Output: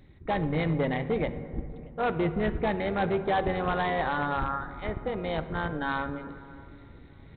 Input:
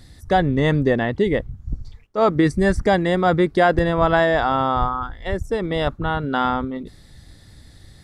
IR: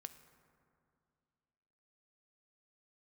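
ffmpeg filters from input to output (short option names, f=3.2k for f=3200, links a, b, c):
-filter_complex "[0:a]areverse,acompressor=mode=upward:threshold=-34dB:ratio=2.5,areverse,asetrate=48069,aresample=44100,tremolo=f=280:d=0.667,aresample=8000,volume=15.5dB,asoftclip=hard,volume=-15.5dB,aresample=44100,asplit=2[a][b];[b]adelay=628,lowpass=f=1.2k:p=1,volume=-23.5dB,asplit=2[c][d];[d]adelay=628,lowpass=f=1.2k:p=1,volume=0.47,asplit=2[e][f];[f]adelay=628,lowpass=f=1.2k:p=1,volume=0.47[g];[a][c][e][g]amix=inputs=4:normalize=0[h];[1:a]atrim=start_sample=2205[i];[h][i]afir=irnorm=-1:irlink=0"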